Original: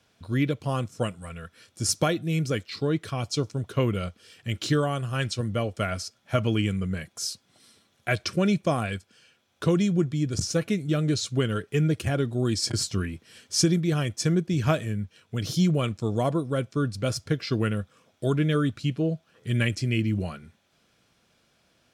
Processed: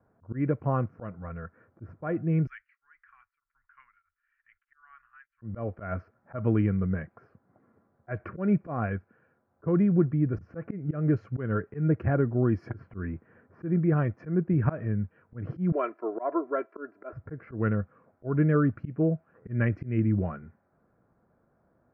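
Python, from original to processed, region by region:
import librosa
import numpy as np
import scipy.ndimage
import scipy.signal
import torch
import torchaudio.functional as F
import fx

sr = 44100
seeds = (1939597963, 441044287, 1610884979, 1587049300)

y = fx.chain(x, sr, fx.cheby2_bandstop(low_hz=100.0, high_hz=610.0, order=4, stop_db=60),
    fx.tremolo_abs(hz=1.6), at=(2.47, 5.42))
y = fx.chain(y, sr, fx.highpass(hz=390.0, slope=24),
    fx.comb(ms=3.0, depth=0.83), at=(15.72, 17.13))
y = scipy.signal.sosfilt(scipy.signal.cheby2(4, 40, 3400.0, 'lowpass', fs=sr, output='sos'), y)
y = fx.auto_swell(y, sr, attack_ms=164.0)
y = fx.env_lowpass(y, sr, base_hz=1100.0, full_db=-24.5)
y = y * librosa.db_to_amplitude(1.0)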